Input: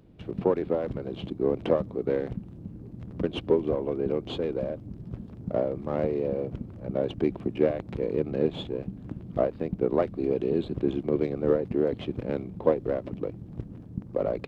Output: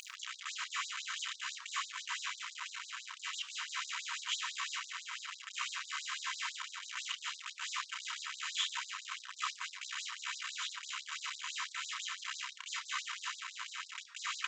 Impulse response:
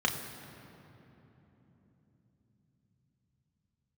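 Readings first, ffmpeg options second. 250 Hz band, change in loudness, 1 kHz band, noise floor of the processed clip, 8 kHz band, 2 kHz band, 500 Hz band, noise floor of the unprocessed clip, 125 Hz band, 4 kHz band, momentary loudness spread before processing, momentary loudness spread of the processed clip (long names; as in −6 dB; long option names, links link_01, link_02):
below −40 dB, −10.5 dB, −3.5 dB, −54 dBFS, can't be measured, +8.5 dB, below −40 dB, −45 dBFS, below −40 dB, +9.0 dB, 13 LU, 6 LU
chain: -filter_complex "[0:a]areverse,acompressor=threshold=-34dB:ratio=16,areverse,aeval=exprs='0.0531*(cos(1*acos(clip(val(0)/0.0531,-1,1)))-cos(1*PI/2))+0.00531*(cos(2*acos(clip(val(0)/0.0531,-1,1)))-cos(2*PI/2))+0.00168*(cos(3*acos(clip(val(0)/0.0531,-1,1)))-cos(3*PI/2))+0.00422*(cos(5*acos(clip(val(0)/0.0531,-1,1)))-cos(5*PI/2))+0.000335*(cos(7*acos(clip(val(0)/0.0531,-1,1)))-cos(7*PI/2))':channel_layout=same,acompressor=mode=upward:threshold=-40dB:ratio=2.5,aresample=16000,acrusher=bits=4:dc=4:mix=0:aa=0.000001,aresample=44100[link_01];[1:a]atrim=start_sample=2205,afade=type=out:start_time=0.2:duration=0.01,atrim=end_sample=9261[link_02];[link_01][link_02]afir=irnorm=-1:irlink=0,afftfilt=real='re*gte(b*sr/1024,910*pow(3800/910,0.5+0.5*sin(2*PI*6*pts/sr)))':imag='im*gte(b*sr/1024,910*pow(3800/910,0.5+0.5*sin(2*PI*6*pts/sr)))':win_size=1024:overlap=0.75,volume=3.5dB"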